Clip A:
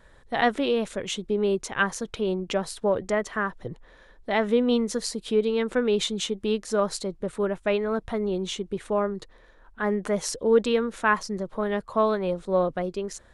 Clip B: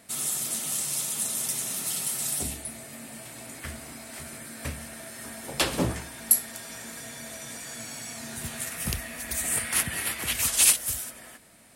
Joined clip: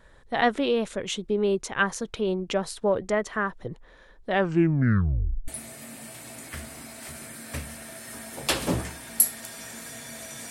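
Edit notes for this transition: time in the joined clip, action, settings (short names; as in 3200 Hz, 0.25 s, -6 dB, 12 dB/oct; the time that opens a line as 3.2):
clip A
4.25 tape stop 1.23 s
5.48 switch to clip B from 2.59 s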